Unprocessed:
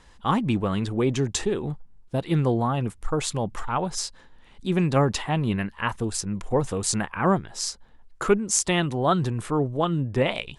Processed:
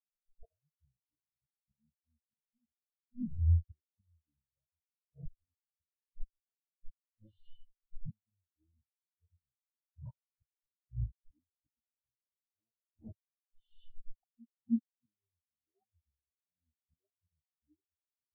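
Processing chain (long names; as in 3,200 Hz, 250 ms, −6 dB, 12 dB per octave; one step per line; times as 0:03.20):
comb filter 7.5 ms, depth 40%
reverb whose tail is shaped and stops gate 370 ms rising, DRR 8.5 dB
treble cut that deepens with the level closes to 2,100 Hz, closed at −15.5 dBFS
gate with flip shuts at −19 dBFS, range −30 dB
reversed playback
upward compression, threshold −42 dBFS
reversed playback
leveller curve on the samples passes 5
wrong playback speed 78 rpm record played at 45 rpm
every bin expanded away from the loudest bin 4 to 1
level −8 dB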